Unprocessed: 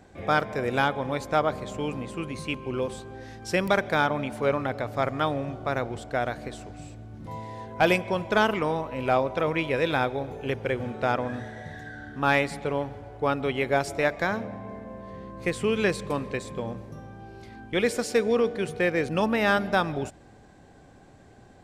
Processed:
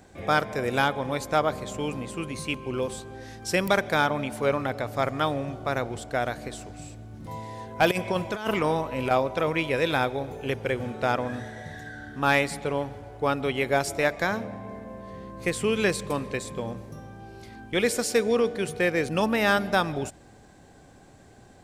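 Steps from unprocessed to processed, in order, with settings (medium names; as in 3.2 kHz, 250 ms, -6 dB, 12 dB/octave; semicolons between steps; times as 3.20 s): treble shelf 5.7 kHz +9.5 dB; 7.91–9.11 s: compressor with a negative ratio -25 dBFS, ratio -0.5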